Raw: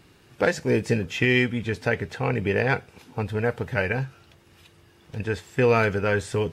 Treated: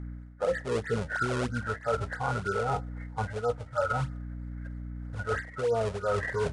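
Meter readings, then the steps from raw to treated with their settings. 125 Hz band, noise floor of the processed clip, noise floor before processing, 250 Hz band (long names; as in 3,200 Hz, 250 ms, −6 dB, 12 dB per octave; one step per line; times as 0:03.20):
−6.5 dB, −46 dBFS, −56 dBFS, −10.5 dB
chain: hearing-aid frequency compression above 1,200 Hz 4 to 1
treble cut that deepens with the level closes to 600 Hz, closed at −16.5 dBFS
noise reduction from a noise print of the clip's start 15 dB
in parallel at −9 dB: sample-and-hold swept by an LFO 35×, swing 160% 3.1 Hz
on the sum: low shelf with overshoot 420 Hz −8 dB, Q 3
mains hum 60 Hz, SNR 17 dB
reversed playback
downward compressor 5 to 1, threshold −33 dBFS, peak gain reduction 17 dB
reversed playback
level +6 dB
Ogg Vorbis 64 kbit/s 22,050 Hz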